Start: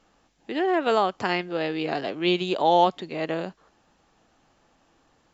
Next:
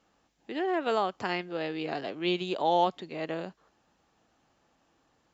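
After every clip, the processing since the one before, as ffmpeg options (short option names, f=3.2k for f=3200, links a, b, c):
-af "highpass=43,volume=-6dB"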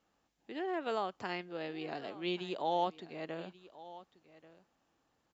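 -af "aecho=1:1:1136:0.126,volume=-7.5dB"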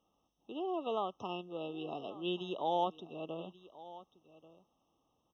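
-af "afftfilt=real='re*eq(mod(floor(b*sr/1024/1300),2),0)':imag='im*eq(mod(floor(b*sr/1024/1300),2),0)':win_size=1024:overlap=0.75"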